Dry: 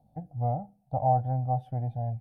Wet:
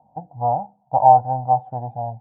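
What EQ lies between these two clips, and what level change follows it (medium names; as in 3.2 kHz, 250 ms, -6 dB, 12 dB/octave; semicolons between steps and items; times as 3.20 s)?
high-pass 240 Hz 6 dB/octave; resonant low-pass 950 Hz, resonance Q 11; +5.0 dB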